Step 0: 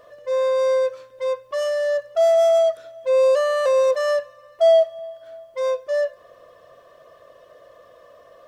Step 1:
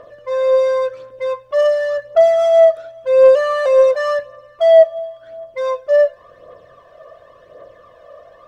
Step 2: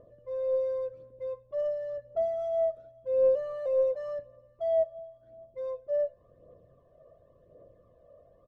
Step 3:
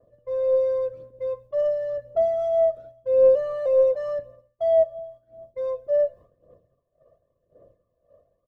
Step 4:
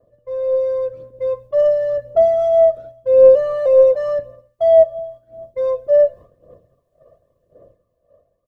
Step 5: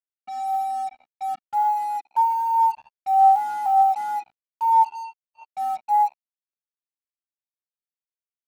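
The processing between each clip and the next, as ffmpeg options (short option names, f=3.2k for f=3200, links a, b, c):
-filter_complex "[0:a]lowpass=f=2.4k:p=1,aphaser=in_gain=1:out_gain=1:delay=1.8:decay=0.5:speed=0.92:type=triangular,asplit=2[a][b];[b]asoftclip=type=tanh:threshold=-14.5dB,volume=-7dB[c];[a][c]amix=inputs=2:normalize=0,volume=2dB"
-af "firequalizer=gain_entry='entry(150,0);entry(890,-19);entry(1500,-25)':delay=0.05:min_phase=1,volume=-5dB"
-af "agate=range=-33dB:threshold=-48dB:ratio=3:detection=peak,volume=7.5dB"
-af "dynaudnorm=f=190:g=11:m=7dB,volume=2dB"
-af "highpass=f=400:t=q:w=0.5412,highpass=f=400:t=q:w=1.307,lowpass=f=2.9k:t=q:w=0.5176,lowpass=f=2.9k:t=q:w=0.7071,lowpass=f=2.9k:t=q:w=1.932,afreqshift=250,acrusher=bits=4:mix=0:aa=0.5,highshelf=f=2.3k:g=-9,volume=-5.5dB"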